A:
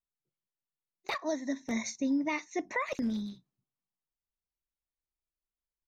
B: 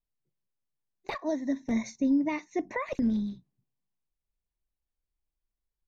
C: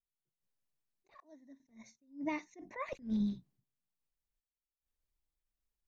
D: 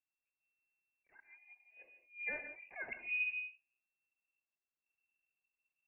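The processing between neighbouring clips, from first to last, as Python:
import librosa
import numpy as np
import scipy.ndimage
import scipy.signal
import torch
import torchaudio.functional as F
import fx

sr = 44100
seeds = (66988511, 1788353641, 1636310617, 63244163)

y1 = fx.tilt_eq(x, sr, slope=-2.5)
y1 = fx.notch(y1, sr, hz=1300.0, q=8.8)
y2 = fx.tremolo_random(y1, sr, seeds[0], hz=2.5, depth_pct=95)
y2 = fx.attack_slew(y2, sr, db_per_s=200.0)
y3 = fx.rev_gated(y2, sr, seeds[1], gate_ms=190, shape='rising', drr_db=8.5)
y3 = fx.freq_invert(y3, sr, carrier_hz=2700)
y3 = F.gain(torch.from_numpy(y3), -4.0).numpy()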